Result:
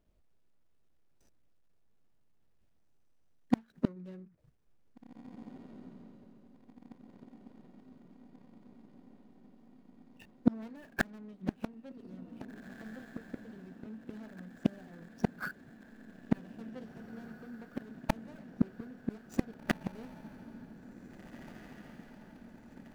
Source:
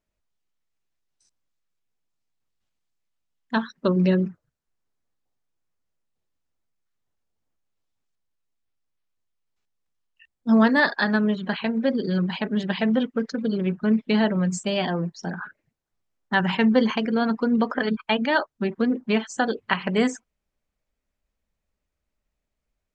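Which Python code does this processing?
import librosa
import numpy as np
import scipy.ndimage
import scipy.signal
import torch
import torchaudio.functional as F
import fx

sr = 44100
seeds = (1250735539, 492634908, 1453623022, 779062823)

y = scipy.signal.medfilt(x, 41)
y = fx.gate_flip(y, sr, shuts_db=-24.0, range_db=-38)
y = fx.echo_diffused(y, sr, ms=1946, feedback_pct=69, wet_db=-14)
y = y * 10.0 ** (11.0 / 20.0)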